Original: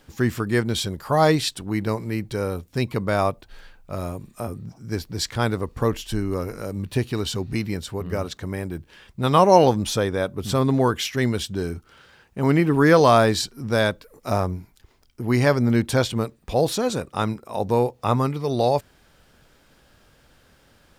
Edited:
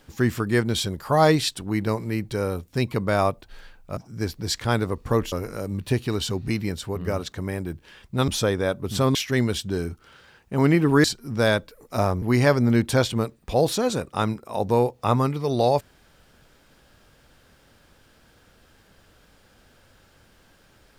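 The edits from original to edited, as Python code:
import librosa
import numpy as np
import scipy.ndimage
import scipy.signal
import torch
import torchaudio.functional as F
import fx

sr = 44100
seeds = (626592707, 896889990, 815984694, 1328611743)

y = fx.edit(x, sr, fx.cut(start_s=3.97, length_s=0.71),
    fx.cut(start_s=6.03, length_s=0.34),
    fx.cut(start_s=9.33, length_s=0.49),
    fx.cut(start_s=10.69, length_s=0.31),
    fx.cut(start_s=12.89, length_s=0.48),
    fx.cut(start_s=14.55, length_s=0.67), tone=tone)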